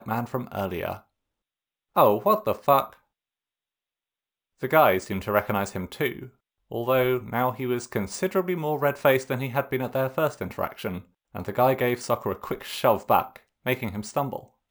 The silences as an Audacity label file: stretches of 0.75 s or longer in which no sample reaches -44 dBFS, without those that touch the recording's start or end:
0.990000	1.960000	silence
2.940000	4.620000	silence